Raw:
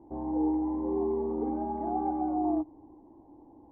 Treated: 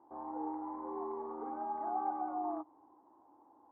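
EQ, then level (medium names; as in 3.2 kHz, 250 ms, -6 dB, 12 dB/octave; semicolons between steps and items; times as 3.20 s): band-pass filter 1.3 kHz, Q 4; +9.5 dB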